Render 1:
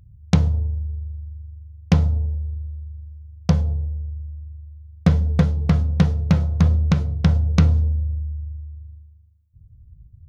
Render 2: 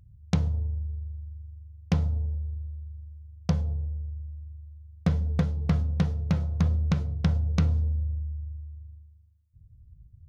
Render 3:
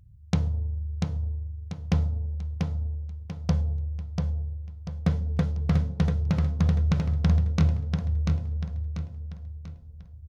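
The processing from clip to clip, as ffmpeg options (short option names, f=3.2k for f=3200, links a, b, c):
-af "alimiter=limit=-7.5dB:level=0:latency=1:release=418,volume=-5.5dB"
-af "aecho=1:1:690|1380|2070|2760|3450:0.631|0.246|0.096|0.0374|0.0146"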